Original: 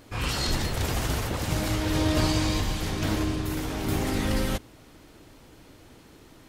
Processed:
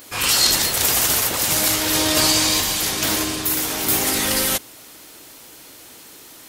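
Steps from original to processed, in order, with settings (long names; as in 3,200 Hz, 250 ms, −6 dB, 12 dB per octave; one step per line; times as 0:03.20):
RIAA equalisation recording
level +7 dB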